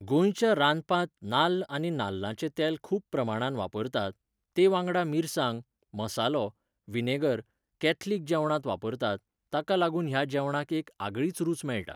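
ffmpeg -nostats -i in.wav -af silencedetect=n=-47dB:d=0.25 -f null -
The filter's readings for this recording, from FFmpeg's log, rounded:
silence_start: 4.12
silence_end: 4.56 | silence_duration: 0.44
silence_start: 5.62
silence_end: 5.94 | silence_duration: 0.32
silence_start: 6.50
silence_end: 6.88 | silence_duration: 0.38
silence_start: 7.42
silence_end: 7.81 | silence_duration: 0.39
silence_start: 9.18
silence_end: 9.53 | silence_duration: 0.35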